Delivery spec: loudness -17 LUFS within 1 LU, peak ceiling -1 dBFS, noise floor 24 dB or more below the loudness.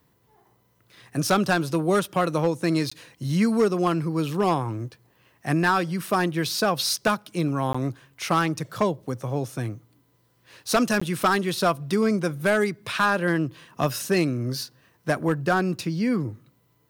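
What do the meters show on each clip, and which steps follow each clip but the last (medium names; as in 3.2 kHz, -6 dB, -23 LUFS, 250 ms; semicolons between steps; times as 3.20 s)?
clipped samples 0.5%; clipping level -13.5 dBFS; dropouts 3; longest dropout 15 ms; loudness -24.5 LUFS; peak level -13.5 dBFS; loudness target -17.0 LUFS
-> clip repair -13.5 dBFS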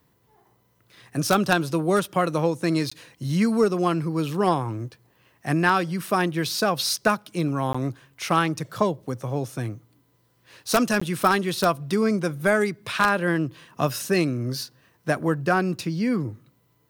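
clipped samples 0.0%; dropouts 3; longest dropout 15 ms
-> interpolate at 2.90/7.73/11.00 s, 15 ms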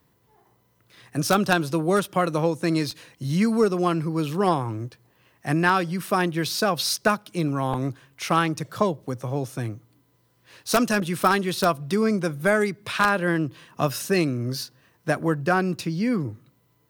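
dropouts 0; loudness -24.0 LUFS; peak level -4.5 dBFS; loudness target -17.0 LUFS
-> trim +7 dB; peak limiter -1 dBFS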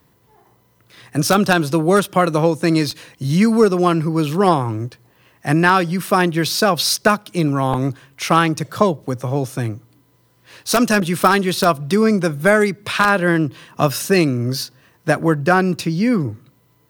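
loudness -17.5 LUFS; peak level -1.0 dBFS; noise floor -58 dBFS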